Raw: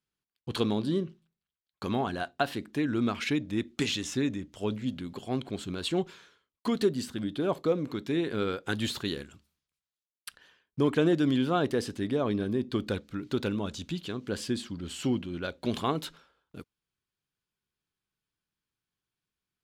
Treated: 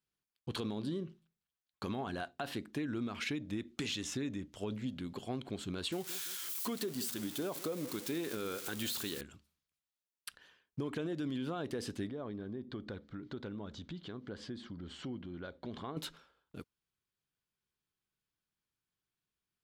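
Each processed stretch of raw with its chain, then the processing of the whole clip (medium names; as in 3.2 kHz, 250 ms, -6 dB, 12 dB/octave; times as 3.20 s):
5.92–9.21 s: zero-crossing glitches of -27 dBFS + bass shelf 130 Hz -9.5 dB + feedback delay 167 ms, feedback 44%, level -19.5 dB
12.09–15.97 s: low-pass 3.3 kHz + peaking EQ 2.6 kHz -10 dB 0.29 oct + compression 2.5:1, threshold -40 dBFS
whole clip: peak limiter -21.5 dBFS; compression, threshold -31 dBFS; trim -3 dB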